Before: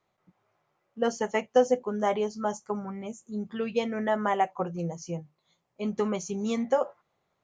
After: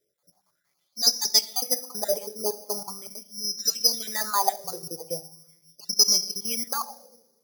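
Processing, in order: random spectral dropouts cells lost 33%; 3.07–5.08 three bands offset in time lows, highs, mids 50/80 ms, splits 180/3600 Hz; shoebox room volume 710 m³, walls mixed, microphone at 0.32 m; careless resampling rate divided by 8×, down filtered, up zero stuff; LFO bell 0.41 Hz 420–5500 Hz +18 dB; gain -10 dB

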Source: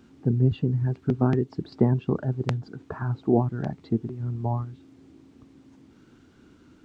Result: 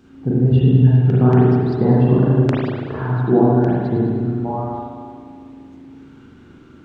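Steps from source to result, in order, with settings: spring tank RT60 2 s, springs 37/48 ms, chirp 65 ms, DRR -7 dB; gain +2 dB

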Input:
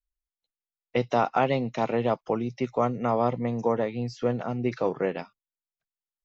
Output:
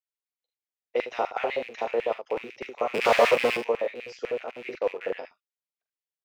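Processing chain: rattling part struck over -35 dBFS, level -29 dBFS; 2.94–3.57 sample leveller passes 5; early reflections 43 ms -7 dB, 74 ms -9.5 dB; 4.51–5.03 gate -29 dBFS, range -16 dB; LFO high-pass square 8 Hz 470–2000 Hz; gain -6.5 dB

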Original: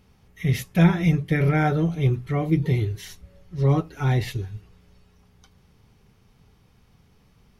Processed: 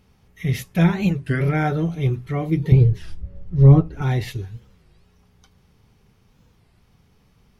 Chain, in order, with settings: 2.72–4.02 tilt -3.5 dB/oct; record warp 33 1/3 rpm, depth 250 cents

